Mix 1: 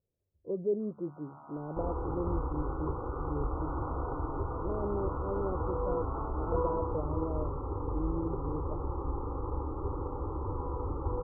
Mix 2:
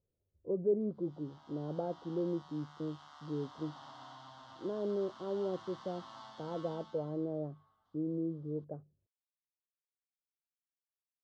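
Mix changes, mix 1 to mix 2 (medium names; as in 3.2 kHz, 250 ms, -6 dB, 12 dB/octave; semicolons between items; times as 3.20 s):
first sound -9.5 dB; second sound: muted; master: remove brick-wall FIR band-stop 1.5–11 kHz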